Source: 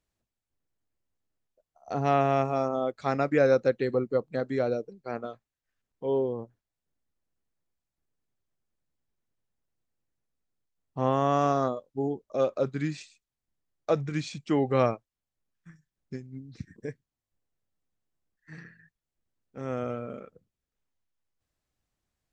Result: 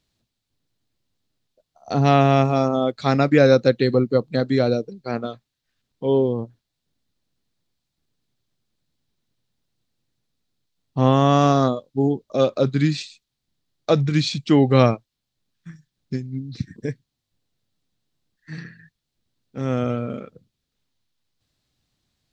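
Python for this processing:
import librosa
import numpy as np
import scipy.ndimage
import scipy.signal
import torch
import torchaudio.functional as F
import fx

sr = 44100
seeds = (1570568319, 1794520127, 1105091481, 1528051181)

y = fx.graphic_eq(x, sr, hz=(125, 250, 4000), db=(7, 5, 12))
y = y * librosa.db_to_amplitude(5.5)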